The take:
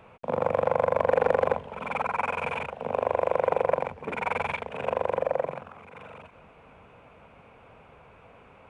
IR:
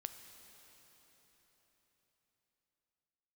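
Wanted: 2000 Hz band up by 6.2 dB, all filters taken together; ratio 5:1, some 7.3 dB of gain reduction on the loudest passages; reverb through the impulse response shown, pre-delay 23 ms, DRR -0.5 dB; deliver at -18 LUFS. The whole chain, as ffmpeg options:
-filter_complex "[0:a]equalizer=f=2k:t=o:g=8,acompressor=threshold=-25dB:ratio=5,asplit=2[a][b];[1:a]atrim=start_sample=2205,adelay=23[c];[b][c]afir=irnorm=-1:irlink=0,volume=3.5dB[d];[a][d]amix=inputs=2:normalize=0,volume=10.5dB"

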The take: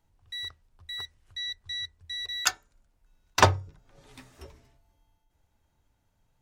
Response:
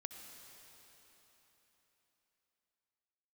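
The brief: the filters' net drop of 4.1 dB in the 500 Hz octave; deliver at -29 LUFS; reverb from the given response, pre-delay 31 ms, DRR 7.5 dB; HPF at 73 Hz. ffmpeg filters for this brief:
-filter_complex "[0:a]highpass=73,equalizer=f=500:t=o:g=-5.5,asplit=2[a][b];[1:a]atrim=start_sample=2205,adelay=31[c];[b][c]afir=irnorm=-1:irlink=0,volume=-4dB[d];[a][d]amix=inputs=2:normalize=0,volume=0.5dB"

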